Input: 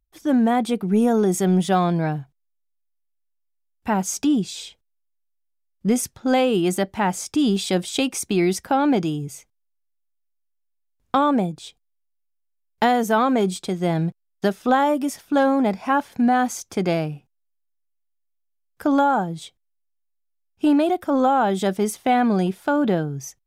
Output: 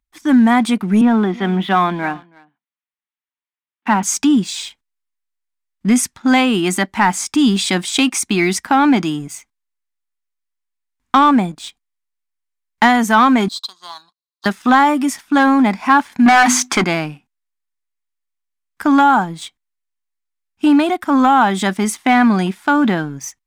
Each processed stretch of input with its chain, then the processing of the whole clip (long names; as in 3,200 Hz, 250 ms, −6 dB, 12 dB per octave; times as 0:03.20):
0:01.01–0:04.03: elliptic band-pass filter 200–3,400 Hz + single-tap delay 323 ms −22 dB
0:13.48–0:14.46: pair of resonant band-passes 2,100 Hz, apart 1.9 octaves + spectral tilt +3.5 dB per octave
0:16.26–0:16.84: mains-hum notches 50/100/150/200/250/300/350 Hz + mid-hump overdrive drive 22 dB, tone 4,200 Hz, clips at −9 dBFS
whole clip: graphic EQ with 10 bands 125 Hz −5 dB, 250 Hz +10 dB, 500 Hz −9 dB, 1,000 Hz +10 dB, 2,000 Hz +10 dB, 4,000 Hz +4 dB, 8,000 Hz +7 dB; leveller curve on the samples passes 1; level −3 dB